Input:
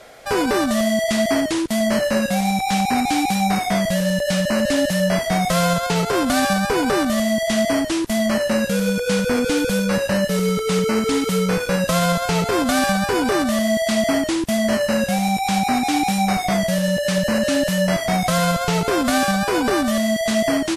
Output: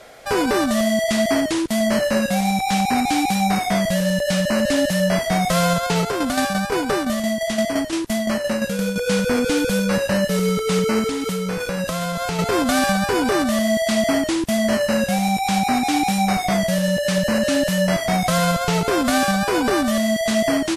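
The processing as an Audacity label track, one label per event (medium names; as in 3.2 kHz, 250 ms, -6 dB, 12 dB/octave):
6.030000	8.960000	tremolo saw down 5.8 Hz, depth 55%
11.070000	12.390000	compression, threshold -20 dBFS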